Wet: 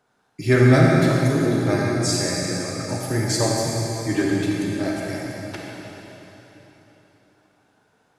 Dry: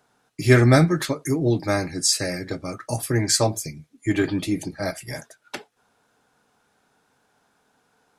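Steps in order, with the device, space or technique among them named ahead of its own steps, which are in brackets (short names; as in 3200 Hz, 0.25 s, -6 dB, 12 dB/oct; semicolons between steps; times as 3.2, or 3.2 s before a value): swimming-pool hall (reverb RT60 3.8 s, pre-delay 34 ms, DRR -3 dB; high shelf 5800 Hz -6.5 dB); gain -3 dB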